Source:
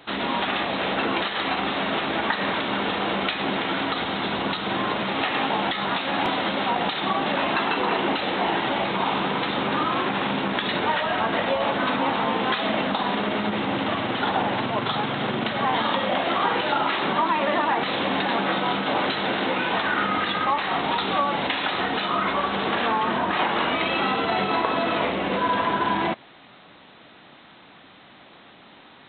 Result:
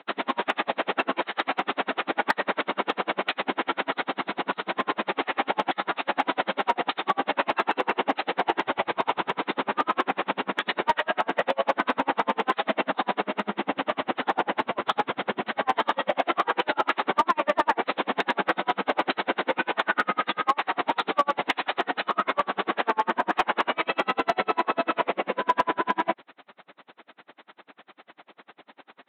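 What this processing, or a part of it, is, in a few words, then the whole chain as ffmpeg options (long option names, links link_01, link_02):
helicopter radio: -filter_complex "[0:a]asettb=1/sr,asplit=3[link_01][link_02][link_03];[link_01]atrim=end=8.644[link_04];[link_02]atrim=start=8.64:end=9.39,asetpts=PTS-STARTPTS,afade=type=in:duration=0.004:curve=qsin,afade=type=out:start_time=0.746:duration=0.004:curve=qsin,lowshelf=frequency=130:width_type=q:width=1.5:gain=11.5[link_05];[link_03]atrim=start=9.386[link_06];[link_04][link_05]acrossfade=duration=0.004:curve1=hsin:curve2=qsin[link_07];[link_07][link_06]acrossfade=duration=0.004:curve1=qsin:curve2=hsin,highpass=310,lowpass=2600,aeval=exprs='val(0)*pow(10,-38*(0.5-0.5*cos(2*PI*10*n/s))/20)':channel_layout=same,asoftclip=type=hard:threshold=-17.5dB,volume=5.5dB"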